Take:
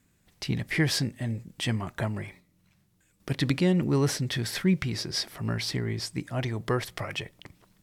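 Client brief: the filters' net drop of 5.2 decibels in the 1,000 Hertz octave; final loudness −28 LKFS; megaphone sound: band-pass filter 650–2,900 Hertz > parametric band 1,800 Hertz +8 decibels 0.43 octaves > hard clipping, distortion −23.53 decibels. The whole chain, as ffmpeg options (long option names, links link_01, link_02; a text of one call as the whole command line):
ffmpeg -i in.wav -af "highpass=650,lowpass=2900,equalizer=frequency=1000:width_type=o:gain=-7,equalizer=frequency=1800:width_type=o:width=0.43:gain=8,asoftclip=type=hard:threshold=-19.5dB,volume=8dB" out.wav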